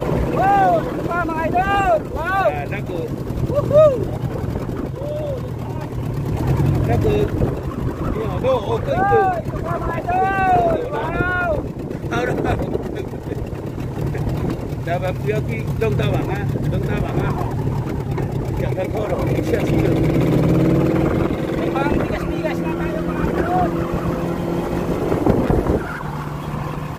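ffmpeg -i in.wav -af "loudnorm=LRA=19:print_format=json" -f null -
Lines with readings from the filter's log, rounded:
"input_i" : "-20.2",
"input_tp" : "-1.4",
"input_lra" : "4.0",
"input_thresh" : "-30.2",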